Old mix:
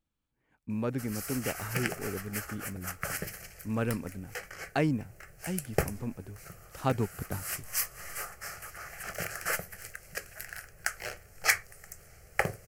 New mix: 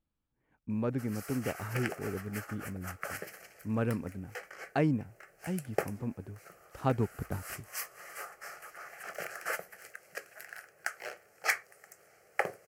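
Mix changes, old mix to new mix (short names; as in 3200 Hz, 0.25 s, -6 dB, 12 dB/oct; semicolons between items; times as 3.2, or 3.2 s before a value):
background: add HPF 360 Hz 12 dB/oct; master: add high shelf 2500 Hz -9.5 dB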